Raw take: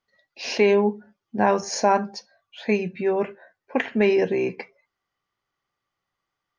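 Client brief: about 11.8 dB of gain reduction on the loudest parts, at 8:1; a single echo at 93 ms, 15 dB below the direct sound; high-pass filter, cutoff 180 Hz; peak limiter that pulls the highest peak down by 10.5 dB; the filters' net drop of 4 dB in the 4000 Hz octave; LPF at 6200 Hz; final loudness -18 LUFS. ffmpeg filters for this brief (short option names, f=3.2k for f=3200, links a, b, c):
-af "highpass=180,lowpass=6.2k,equalizer=f=4k:t=o:g=-4.5,acompressor=threshold=-27dB:ratio=8,alimiter=level_in=2dB:limit=-24dB:level=0:latency=1,volume=-2dB,aecho=1:1:93:0.178,volume=18dB"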